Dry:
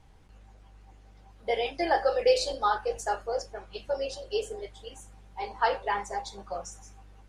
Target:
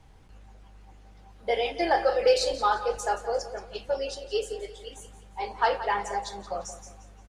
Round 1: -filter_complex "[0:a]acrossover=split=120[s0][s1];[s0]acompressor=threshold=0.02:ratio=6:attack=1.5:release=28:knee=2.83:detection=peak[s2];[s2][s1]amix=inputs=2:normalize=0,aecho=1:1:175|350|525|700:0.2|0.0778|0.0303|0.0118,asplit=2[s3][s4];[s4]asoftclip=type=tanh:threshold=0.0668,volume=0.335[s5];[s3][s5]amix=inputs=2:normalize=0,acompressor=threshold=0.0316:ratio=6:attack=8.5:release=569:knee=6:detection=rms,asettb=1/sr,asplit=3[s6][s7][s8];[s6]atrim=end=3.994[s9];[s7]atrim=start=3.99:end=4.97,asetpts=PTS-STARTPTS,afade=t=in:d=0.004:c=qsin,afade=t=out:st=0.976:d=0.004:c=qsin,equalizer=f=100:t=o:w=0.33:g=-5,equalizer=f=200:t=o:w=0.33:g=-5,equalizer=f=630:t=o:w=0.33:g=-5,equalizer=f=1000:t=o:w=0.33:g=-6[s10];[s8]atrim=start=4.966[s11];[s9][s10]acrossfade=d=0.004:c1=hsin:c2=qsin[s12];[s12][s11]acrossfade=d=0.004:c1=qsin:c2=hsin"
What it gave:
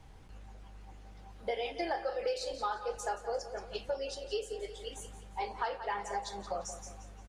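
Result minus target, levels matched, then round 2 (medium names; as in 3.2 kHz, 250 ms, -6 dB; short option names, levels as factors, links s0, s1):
compression: peak gain reduction +14.5 dB
-filter_complex "[0:a]acrossover=split=120[s0][s1];[s0]acompressor=threshold=0.02:ratio=6:attack=1.5:release=28:knee=2.83:detection=peak[s2];[s2][s1]amix=inputs=2:normalize=0,aecho=1:1:175|350|525|700:0.2|0.0778|0.0303|0.0118,asplit=2[s3][s4];[s4]asoftclip=type=tanh:threshold=0.0668,volume=0.335[s5];[s3][s5]amix=inputs=2:normalize=0,asettb=1/sr,asplit=3[s6][s7][s8];[s6]atrim=end=3.994[s9];[s7]atrim=start=3.99:end=4.97,asetpts=PTS-STARTPTS,afade=t=in:d=0.004:c=qsin,afade=t=out:st=0.976:d=0.004:c=qsin,equalizer=f=100:t=o:w=0.33:g=-5,equalizer=f=200:t=o:w=0.33:g=-5,equalizer=f=630:t=o:w=0.33:g=-5,equalizer=f=1000:t=o:w=0.33:g=-6[s10];[s8]atrim=start=4.966[s11];[s9][s10]acrossfade=d=0.004:c1=hsin:c2=qsin[s12];[s12][s11]acrossfade=d=0.004:c1=qsin:c2=hsin"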